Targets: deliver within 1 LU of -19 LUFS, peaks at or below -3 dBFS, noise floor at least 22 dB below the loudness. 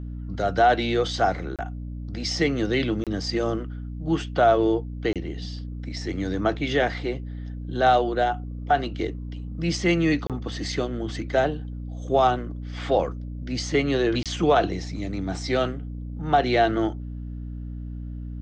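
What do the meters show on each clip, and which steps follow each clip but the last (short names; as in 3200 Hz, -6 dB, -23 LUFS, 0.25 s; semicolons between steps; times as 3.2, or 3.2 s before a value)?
dropouts 5; longest dropout 27 ms; hum 60 Hz; harmonics up to 300 Hz; hum level -31 dBFS; loudness -25.0 LUFS; peak -8.0 dBFS; loudness target -19.0 LUFS
-> interpolate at 1.56/3.04/5.13/10.27/14.23, 27 ms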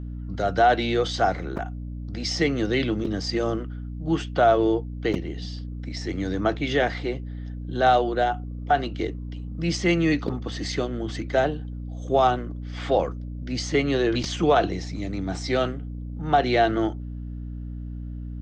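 dropouts 0; hum 60 Hz; harmonics up to 300 Hz; hum level -31 dBFS
-> notches 60/120/180/240/300 Hz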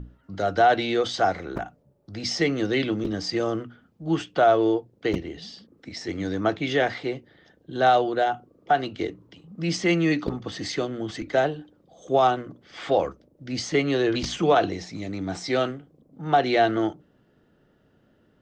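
hum none; loudness -25.0 LUFS; peak -8.0 dBFS; loudness target -19.0 LUFS
-> gain +6 dB; limiter -3 dBFS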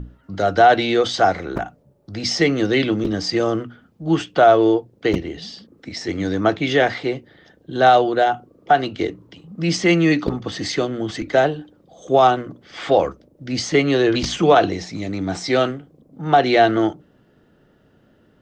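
loudness -19.0 LUFS; peak -3.0 dBFS; noise floor -57 dBFS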